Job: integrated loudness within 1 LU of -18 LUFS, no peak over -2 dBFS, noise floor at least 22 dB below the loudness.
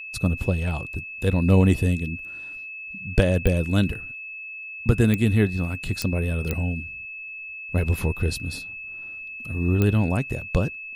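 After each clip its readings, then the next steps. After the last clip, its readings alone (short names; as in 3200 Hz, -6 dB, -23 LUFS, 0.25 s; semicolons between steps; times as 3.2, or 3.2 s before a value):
clicks 5; steady tone 2600 Hz; tone level -34 dBFS; loudness -25.0 LUFS; peak -4.0 dBFS; loudness target -18.0 LUFS
-> de-click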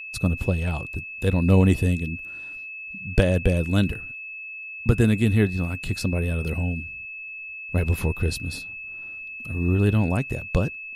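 clicks 0; steady tone 2600 Hz; tone level -34 dBFS
-> notch 2600 Hz, Q 30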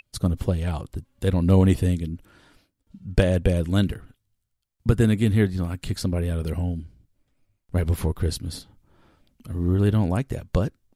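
steady tone none; loudness -24.0 LUFS; peak -4.5 dBFS; loudness target -18.0 LUFS
-> gain +6 dB; limiter -2 dBFS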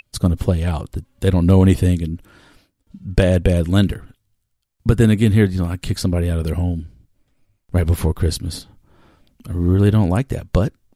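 loudness -18.5 LUFS; peak -2.0 dBFS; noise floor -71 dBFS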